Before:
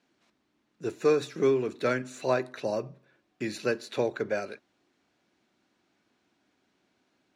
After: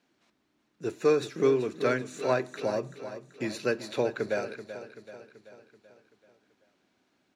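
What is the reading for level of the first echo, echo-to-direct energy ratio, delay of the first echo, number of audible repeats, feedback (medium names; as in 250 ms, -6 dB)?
-12.0 dB, -10.5 dB, 383 ms, 5, 53%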